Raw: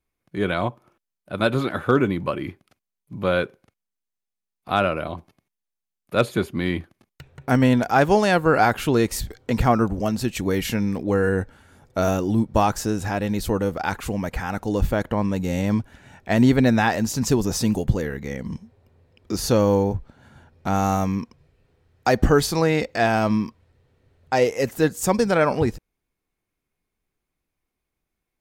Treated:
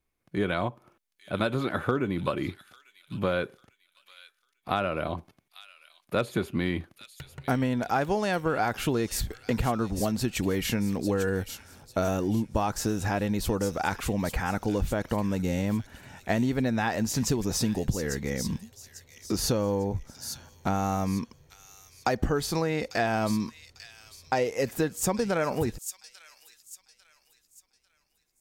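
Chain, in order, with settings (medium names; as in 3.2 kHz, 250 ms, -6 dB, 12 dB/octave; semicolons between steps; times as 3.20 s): compression, threshold -23 dBFS, peak gain reduction 11.5 dB; feedback echo behind a high-pass 847 ms, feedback 34%, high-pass 3.8 kHz, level -5.5 dB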